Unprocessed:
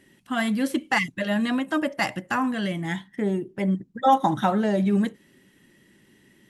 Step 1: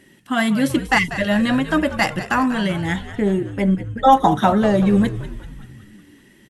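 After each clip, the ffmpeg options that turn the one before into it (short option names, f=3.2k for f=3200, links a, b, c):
-filter_complex "[0:a]asplit=7[a][b][c][d][e][f][g];[b]adelay=191,afreqshift=-82,volume=-13dB[h];[c]adelay=382,afreqshift=-164,volume=-17.7dB[i];[d]adelay=573,afreqshift=-246,volume=-22.5dB[j];[e]adelay=764,afreqshift=-328,volume=-27.2dB[k];[f]adelay=955,afreqshift=-410,volume=-31.9dB[l];[g]adelay=1146,afreqshift=-492,volume=-36.7dB[m];[a][h][i][j][k][l][m]amix=inputs=7:normalize=0,volume=6dB"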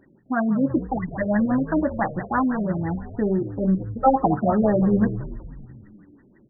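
-af "bandreject=f=197.5:t=h:w=4,bandreject=f=395:t=h:w=4,afftfilt=real='re*lt(b*sr/1024,660*pow(2000/660,0.5+0.5*sin(2*PI*6*pts/sr)))':imag='im*lt(b*sr/1024,660*pow(2000/660,0.5+0.5*sin(2*PI*6*pts/sr)))':win_size=1024:overlap=0.75,volume=-2.5dB"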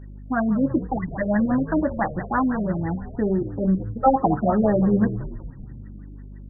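-af "aeval=exprs='val(0)+0.0126*(sin(2*PI*50*n/s)+sin(2*PI*2*50*n/s)/2+sin(2*PI*3*50*n/s)/3+sin(2*PI*4*50*n/s)/4+sin(2*PI*5*50*n/s)/5)':c=same"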